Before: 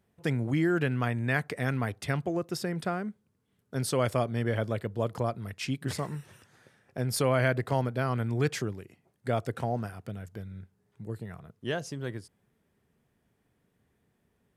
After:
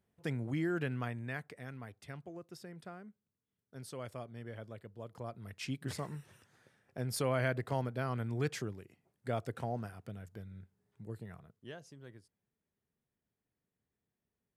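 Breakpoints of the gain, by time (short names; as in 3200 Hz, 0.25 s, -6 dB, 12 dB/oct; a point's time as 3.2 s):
0.95 s -8 dB
1.66 s -17 dB
5.08 s -17 dB
5.58 s -7 dB
11.36 s -7 dB
11.76 s -17 dB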